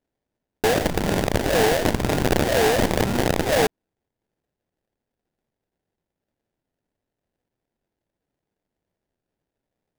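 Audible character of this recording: phasing stages 2, 2 Hz, lowest notch 800–2300 Hz; aliases and images of a low sample rate 1.2 kHz, jitter 20%

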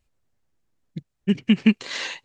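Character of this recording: noise floor -77 dBFS; spectral tilt -5.0 dB/octave

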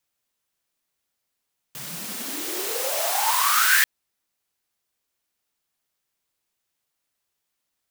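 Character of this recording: noise floor -80 dBFS; spectral tilt +0.5 dB/octave

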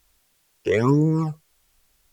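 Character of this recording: phasing stages 12, 1.2 Hz, lowest notch 200–1000 Hz; a quantiser's noise floor 12-bit, dither triangular; Opus

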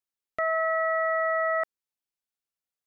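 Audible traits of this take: noise floor -92 dBFS; spectral tilt +7.5 dB/octave

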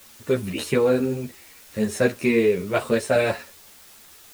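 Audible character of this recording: a quantiser's noise floor 8-bit, dither triangular; a shimmering, thickened sound

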